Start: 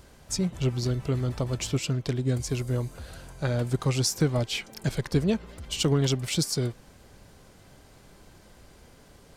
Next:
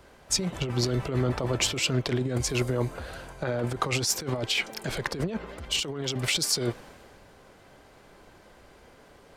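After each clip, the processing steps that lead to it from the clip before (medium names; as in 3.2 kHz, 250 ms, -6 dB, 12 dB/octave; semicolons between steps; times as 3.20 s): tone controls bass -10 dB, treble -7 dB; compressor with a negative ratio -35 dBFS, ratio -1; three bands expanded up and down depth 40%; trim +7.5 dB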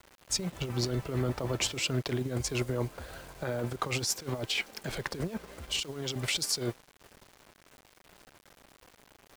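transient shaper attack -1 dB, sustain -7 dB; bit crusher 8-bit; trim -4 dB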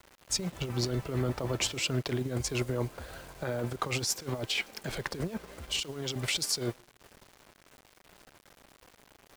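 reverberation RT60 0.35 s, pre-delay 80 ms, DRR 32 dB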